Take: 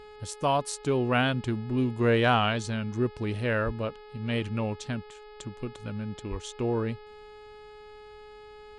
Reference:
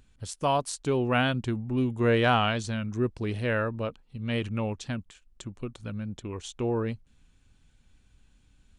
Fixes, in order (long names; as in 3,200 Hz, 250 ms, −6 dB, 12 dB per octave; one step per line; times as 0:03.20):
hum removal 422.2 Hz, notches 12
0:03.65–0:03.77: high-pass filter 140 Hz 24 dB per octave
0:06.30–0:06.42: high-pass filter 140 Hz 24 dB per octave